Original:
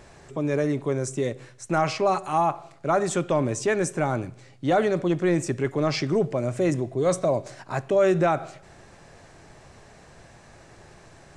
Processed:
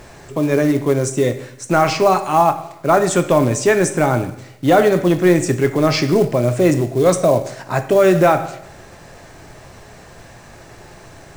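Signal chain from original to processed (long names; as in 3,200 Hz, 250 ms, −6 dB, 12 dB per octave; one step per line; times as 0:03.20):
coupled-rooms reverb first 0.67 s, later 1.7 s, from −19 dB, DRR 8.5 dB
log-companded quantiser 6 bits
level +8.5 dB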